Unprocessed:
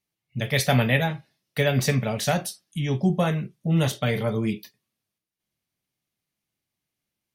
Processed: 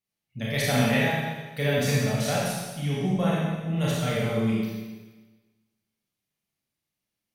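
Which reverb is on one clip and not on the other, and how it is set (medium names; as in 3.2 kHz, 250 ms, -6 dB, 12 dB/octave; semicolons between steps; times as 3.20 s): Schroeder reverb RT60 1.3 s, combs from 28 ms, DRR -6 dB; trim -8 dB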